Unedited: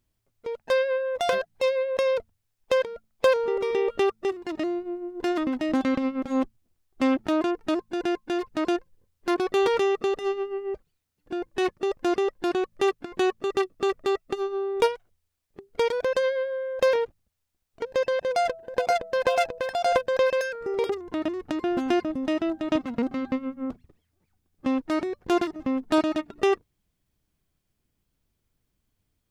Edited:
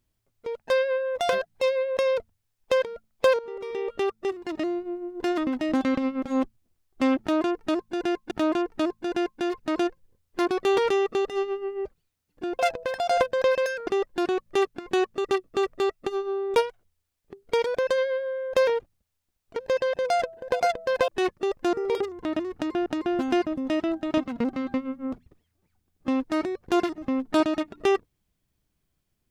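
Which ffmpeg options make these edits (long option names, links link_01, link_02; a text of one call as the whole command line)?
ffmpeg -i in.wav -filter_complex "[0:a]asplit=8[link_01][link_02][link_03][link_04][link_05][link_06][link_07][link_08];[link_01]atrim=end=3.39,asetpts=PTS-STARTPTS,afade=type=out:start_time=3.386:duration=0.004:curve=hsin:silence=0.199526[link_09];[link_02]atrim=start=3.39:end=8.312,asetpts=PTS-STARTPTS,afade=type=in:duration=1.07:silence=0.199526[link_10];[link_03]atrim=start=7.198:end=11.482[link_11];[link_04]atrim=start=19.338:end=20.622[link_12];[link_05]atrim=start=12.128:end=19.342[link_13];[link_06]atrim=start=11.478:end=12.132[link_14];[link_07]atrim=start=20.618:end=21.752[link_15];[link_08]atrim=start=21.438[link_16];[link_09][link_10]concat=n=2:v=0:a=1[link_17];[link_17][link_11]acrossfade=duration=0.004:curve1=hsin:curve2=hsin[link_18];[link_18][link_12]acrossfade=duration=0.004:curve1=hsin:curve2=hsin[link_19];[link_19][link_13]acrossfade=duration=0.004:curve1=hsin:curve2=hsin[link_20];[link_20][link_14]acrossfade=duration=0.004:curve1=hsin:curve2=hsin[link_21];[link_21][link_15]acrossfade=duration=0.004:curve1=hsin:curve2=hsin[link_22];[link_22][link_16]acrossfade=duration=0.004:curve1=hsin:curve2=hsin" out.wav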